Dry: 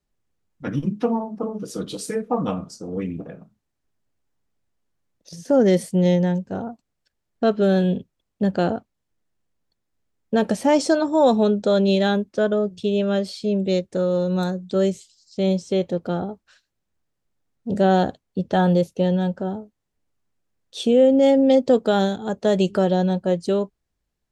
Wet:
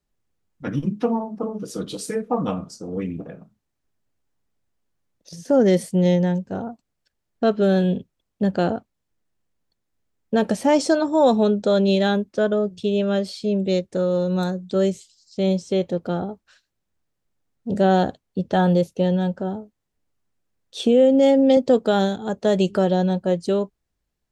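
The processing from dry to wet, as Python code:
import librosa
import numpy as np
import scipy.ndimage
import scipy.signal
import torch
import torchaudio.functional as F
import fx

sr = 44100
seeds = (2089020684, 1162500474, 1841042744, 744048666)

y = fx.band_squash(x, sr, depth_pct=40, at=(20.79, 21.57))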